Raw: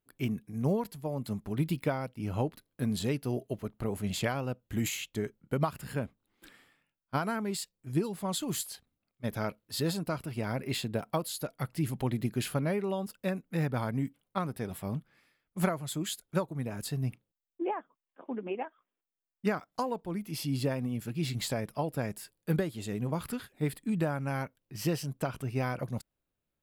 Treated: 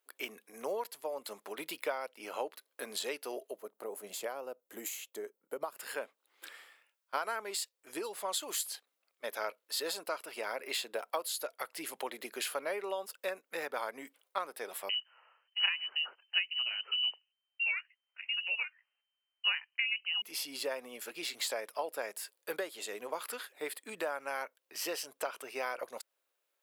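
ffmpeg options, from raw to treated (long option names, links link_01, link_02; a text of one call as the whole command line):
ffmpeg -i in.wav -filter_complex "[0:a]asettb=1/sr,asplit=3[link_01][link_02][link_03];[link_01]atrim=end=3.514[link_04];[link_02]atrim=start=3.51:end=5.77,asetpts=PTS-STARTPTS,afade=type=in:duration=0.004:curve=qsin,afade=type=out:start_time=2.256:duration=0.004:curve=qsin,equalizer=frequency=2700:width=0.38:gain=-14[link_05];[link_03]atrim=start=5.766[link_06];[link_04][link_05]acrossfade=duration=0.004:curve1=hsin:curve2=qsin[link_07];[link_07][link_06]acrossfade=duration=0.004:curve1=qsin:curve2=hsin,asettb=1/sr,asplit=3[link_08][link_09][link_10];[link_08]atrim=end=14.894[link_11];[link_09]atrim=start=14.89:end=20.22,asetpts=PTS-STARTPTS,afade=type=in:duration=0.004:curve=qsin,afade=type=out:start_time=5.326:duration=0.004:curve=qsin,lowpass=frequency=2600:width_type=q:width=0.5098,lowpass=frequency=2600:width_type=q:width=0.6013,lowpass=frequency=2600:width_type=q:width=0.9,lowpass=frequency=2600:width_type=q:width=2.563,afreqshift=-3100[link_12];[link_10]atrim=start=20.216[link_13];[link_11][link_12]acrossfade=duration=0.004:curve1=hsin:curve2=qsin[link_14];[link_14][link_13]acrossfade=duration=0.004:curve1=qsin:curve2=hsin,highpass=frequency=490:width=0.5412,highpass=frequency=490:width=1.3066,equalizer=frequency=730:width=3:gain=-3.5,acompressor=threshold=-52dB:ratio=1.5,volume=7.5dB" out.wav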